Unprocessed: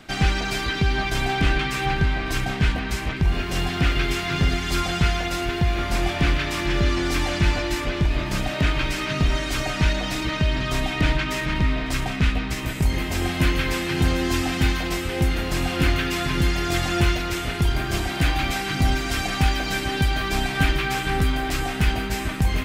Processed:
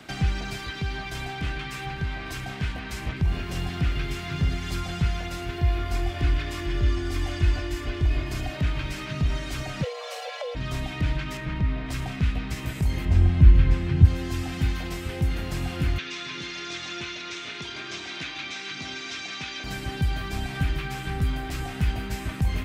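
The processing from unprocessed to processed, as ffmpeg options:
ffmpeg -i in.wav -filter_complex "[0:a]asettb=1/sr,asplit=3[link_01][link_02][link_03];[link_01]atrim=end=0.564[link_04];[link_02]atrim=start=0.56:end=2.97,asetpts=PTS-STARTPTS,afade=type=in:duration=0.004:curve=qsin,afade=type=out:start_time=2.406:duration=0.004:curve=qsin,lowshelf=frequency=370:gain=-6[link_05];[link_03]atrim=start=2.966[link_06];[link_04][link_05]acrossfade=duration=0.004:curve1=hsin:curve2=qsin[link_07];[link_07][link_06]acrossfade=duration=0.004:curve1=qsin:curve2=hsin,asettb=1/sr,asplit=3[link_08][link_09][link_10];[link_08]atrim=end=5.584[link_11];[link_09]atrim=start=5.58:end=8.57,asetpts=PTS-STARTPTS,afade=type=in:duration=0.004:curve=qsin,afade=type=out:start_time=2.986:duration=0.004:curve=qsin,aecho=1:1:2.8:0.65,atrim=end_sample=131859[link_12];[link_10]atrim=start=8.566[link_13];[link_11][link_12]acrossfade=duration=0.004:curve1=hsin:curve2=qsin[link_14];[link_14][link_13]acrossfade=duration=0.004:curve1=qsin:curve2=hsin,asplit=3[link_15][link_16][link_17];[link_15]afade=type=out:start_time=9.82:duration=0.02[link_18];[link_16]afreqshift=430,afade=type=in:start_time=9.82:duration=0.02,afade=type=out:start_time=10.54:duration=0.02[link_19];[link_17]afade=type=in:start_time=10.54:duration=0.02[link_20];[link_18][link_19][link_20]amix=inputs=3:normalize=0,asettb=1/sr,asplit=3[link_21][link_22][link_23];[link_21]atrim=end=11.374[link_24];[link_22]atrim=start=11.37:end=11.89,asetpts=PTS-STARTPTS,afade=type=in:duration=0.004:curve=qsin,afade=type=out:start_time=0.516:duration=0.004:curve=qsin,highshelf=frequency=4100:gain=-11[link_25];[link_23]atrim=start=11.886[link_26];[link_24][link_25]acrossfade=duration=0.004:curve1=hsin:curve2=qsin[link_27];[link_27][link_26]acrossfade=duration=0.004:curve1=qsin:curve2=hsin,asettb=1/sr,asplit=3[link_28][link_29][link_30];[link_28]atrim=end=13.054[link_31];[link_29]atrim=start=13.05:end=14.05,asetpts=PTS-STARTPTS,afade=type=in:duration=0.004:curve=qsin,afade=type=out:start_time=0.996:duration=0.004:curve=qsin,aemphasis=mode=reproduction:type=bsi[link_32];[link_30]atrim=start=14.046[link_33];[link_31][link_32]acrossfade=duration=0.004:curve1=hsin:curve2=qsin[link_34];[link_34][link_33]acrossfade=duration=0.004:curve1=qsin:curve2=hsin,asettb=1/sr,asplit=3[link_35][link_36][link_37];[link_35]atrim=end=15.984[link_38];[link_36]atrim=start=15.98:end=19.64,asetpts=PTS-STARTPTS,afade=type=in:duration=0.004:curve=qsin,afade=type=out:start_time=3.656:duration=0.004:curve=qsin,highpass=370,equalizer=frequency=510:width_type=q:width=4:gain=-4,equalizer=frequency=750:width_type=q:width=4:gain=-8,equalizer=frequency=2400:width_type=q:width=4:gain=5,equalizer=frequency=3700:width_type=q:width=4:gain=8,equalizer=frequency=6000:width_type=q:width=4:gain=7,lowpass=frequency=6600:width=0.5412,lowpass=frequency=6600:width=1.3066[link_39];[link_37]atrim=start=19.636[link_40];[link_38][link_39]acrossfade=duration=0.004:curve1=hsin:curve2=qsin[link_41];[link_41][link_40]acrossfade=duration=0.004:curve1=qsin:curve2=hsin,highpass=57,acrossover=split=160[link_42][link_43];[link_43]acompressor=threshold=-36dB:ratio=3[link_44];[link_42][link_44]amix=inputs=2:normalize=0" out.wav

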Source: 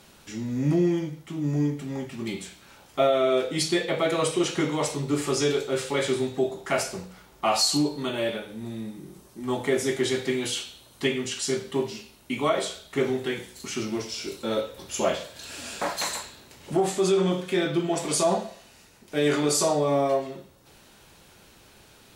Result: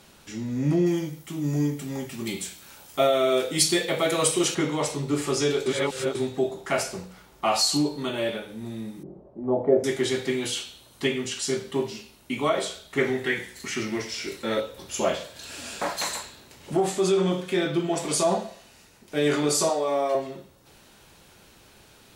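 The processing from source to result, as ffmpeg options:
ffmpeg -i in.wav -filter_complex "[0:a]asettb=1/sr,asplit=3[link_01][link_02][link_03];[link_01]atrim=end=0.864[link_04];[link_02]atrim=start=0.86:end=4.55,asetpts=PTS-STARTPTS,afade=type=in:duration=0.004:curve=qsin,afade=type=out:start_time=3.686:duration=0.004:curve=qsin,aemphasis=mode=production:type=50kf[link_05];[link_03]atrim=start=4.546[link_06];[link_04][link_05]acrossfade=duration=0.004:curve1=hsin:curve2=qsin[link_07];[link_07][link_06]acrossfade=duration=0.004:curve1=qsin:curve2=hsin,asettb=1/sr,asplit=3[link_08][link_09][link_10];[link_08]atrim=end=9.034[link_11];[link_09]atrim=start=9.03:end=9.84,asetpts=PTS-STARTPTS,afade=type=in:duration=0.004:curve=qsin,afade=type=out:start_time=0.806:duration=0.004:curve=qsin,lowpass=frequency=610:width_type=q:width=3.2[link_12];[link_10]atrim=start=9.836[link_13];[link_11][link_12]acrossfade=duration=0.004:curve1=hsin:curve2=qsin[link_14];[link_14][link_13]acrossfade=duration=0.004:curve1=qsin:curve2=hsin,asettb=1/sr,asplit=3[link_15][link_16][link_17];[link_15]atrim=end=12.984[link_18];[link_16]atrim=start=12.98:end=14.6,asetpts=PTS-STARTPTS,afade=type=in:duration=0.004:curve=qsin,afade=type=out:start_time=1.616:duration=0.004:curve=qsin,equalizer=frequency=1900:width_type=o:width=0.46:gain=12.5[link_19];[link_17]atrim=start=14.596[link_20];[link_18][link_19]acrossfade=duration=0.004:curve1=hsin:curve2=qsin[link_21];[link_21][link_20]acrossfade=duration=0.004:curve1=qsin:curve2=hsin,asettb=1/sr,asplit=3[link_22][link_23][link_24];[link_22]atrim=end=19.694[link_25];[link_23]atrim=start=19.69:end=20.15,asetpts=PTS-STARTPTS,afade=type=in:duration=0.004:curve=qsin,afade=type=out:start_time=0.456:duration=0.004:curve=qsin,highpass=410[link_26];[link_24]atrim=start=20.146[link_27];[link_25][link_26]acrossfade=duration=0.004:curve1=hsin:curve2=qsin[link_28];[link_28][link_27]acrossfade=duration=0.004:curve1=qsin:curve2=hsin,asplit=3[link_29][link_30][link_31];[link_29]atrim=end=5.662[link_32];[link_30]atrim=start=5.658:end=6.152,asetpts=PTS-STARTPTS,areverse[link_33];[link_31]atrim=start=6.148[link_34];[link_32][link_33]acrossfade=duration=0.004:curve1=hsin:curve2=hsin[link_35];[link_35][link_34]acrossfade=duration=0.004:curve1=hsin:curve2=hsin" out.wav

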